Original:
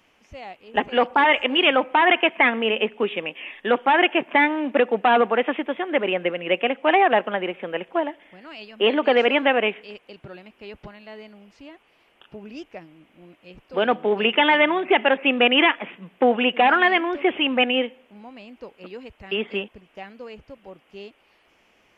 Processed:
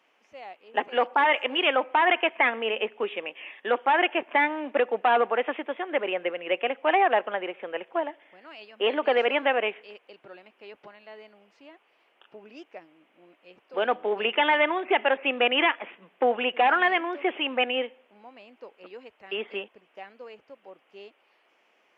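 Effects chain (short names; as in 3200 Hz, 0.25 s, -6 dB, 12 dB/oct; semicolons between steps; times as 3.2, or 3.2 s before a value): HPF 400 Hz 12 dB/oct; high shelf 4000 Hz -9 dB; gain -3 dB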